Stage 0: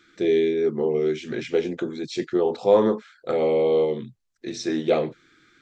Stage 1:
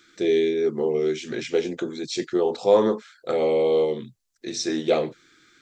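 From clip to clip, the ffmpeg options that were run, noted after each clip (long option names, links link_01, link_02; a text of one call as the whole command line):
ffmpeg -i in.wav -af "bass=frequency=250:gain=-3,treble=frequency=4000:gain=8" out.wav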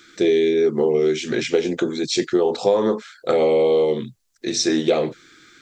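ffmpeg -i in.wav -af "acompressor=threshold=-21dB:ratio=10,volume=7.5dB" out.wav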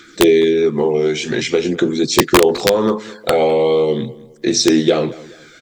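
ffmpeg -i in.wav -filter_complex "[0:a]aphaser=in_gain=1:out_gain=1:delay=1.4:decay=0.4:speed=0.45:type=triangular,aeval=exprs='(mod(2.24*val(0)+1,2)-1)/2.24':channel_layout=same,asplit=2[link_01][link_02];[link_02]adelay=208,lowpass=frequency=2500:poles=1,volume=-19dB,asplit=2[link_03][link_04];[link_04]adelay=208,lowpass=frequency=2500:poles=1,volume=0.32,asplit=2[link_05][link_06];[link_06]adelay=208,lowpass=frequency=2500:poles=1,volume=0.32[link_07];[link_01][link_03][link_05][link_07]amix=inputs=4:normalize=0,volume=4.5dB" out.wav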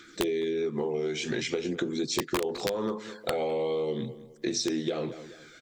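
ffmpeg -i in.wav -af "acompressor=threshold=-18dB:ratio=6,volume=-8.5dB" out.wav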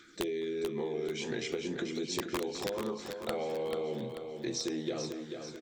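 ffmpeg -i in.wav -af "aecho=1:1:438|876|1314|1752|2190|2628:0.447|0.21|0.0987|0.0464|0.0218|0.0102,volume=-6dB" out.wav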